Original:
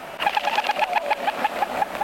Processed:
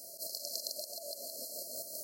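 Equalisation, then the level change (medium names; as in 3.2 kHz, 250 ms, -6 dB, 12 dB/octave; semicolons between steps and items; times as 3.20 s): high-pass 79 Hz 24 dB/octave; brick-wall FIR band-stop 690–4100 Hz; pre-emphasis filter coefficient 0.97; +3.5 dB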